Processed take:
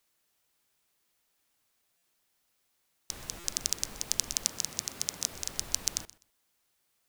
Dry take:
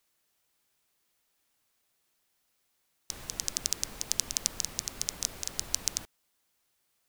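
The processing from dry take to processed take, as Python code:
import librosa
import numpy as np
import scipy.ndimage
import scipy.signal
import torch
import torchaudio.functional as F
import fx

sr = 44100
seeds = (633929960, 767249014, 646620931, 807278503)

p1 = fx.highpass(x, sr, hz=85.0, slope=12, at=(4.46, 5.32))
p2 = p1 + fx.echo_feedback(p1, sr, ms=126, feedback_pct=20, wet_db=-20, dry=0)
y = fx.buffer_glitch(p2, sr, at_s=(1.97, 3.39), block=256, repeats=8)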